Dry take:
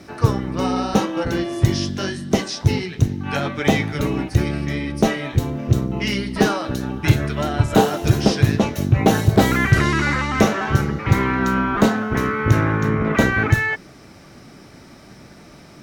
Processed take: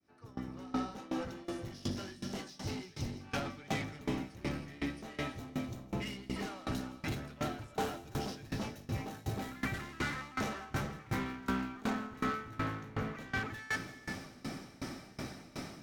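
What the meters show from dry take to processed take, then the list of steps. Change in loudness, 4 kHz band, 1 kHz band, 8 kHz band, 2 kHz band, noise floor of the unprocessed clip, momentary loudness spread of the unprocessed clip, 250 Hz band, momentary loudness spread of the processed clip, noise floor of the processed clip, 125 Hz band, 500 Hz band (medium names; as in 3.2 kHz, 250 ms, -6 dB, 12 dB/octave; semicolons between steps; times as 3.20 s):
-20.0 dB, -16.5 dB, -17.5 dB, -17.5 dB, -18.0 dB, -44 dBFS, 7 LU, -18.5 dB, 8 LU, -55 dBFS, -22.5 dB, -20.5 dB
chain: fade-in on the opening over 3.05 s; reverse; compression 5:1, threshold -30 dBFS, peak gain reduction 19.5 dB; reverse; saturation -34 dBFS, distortion -8 dB; feedback comb 260 Hz, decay 0.17 s, harmonics odd, mix 60%; on a send: feedback echo behind a high-pass 166 ms, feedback 78%, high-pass 3.5 kHz, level -10 dB; on the sum: gated-style reverb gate 430 ms rising, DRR 8 dB; sawtooth tremolo in dB decaying 2.7 Hz, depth 22 dB; trim +12 dB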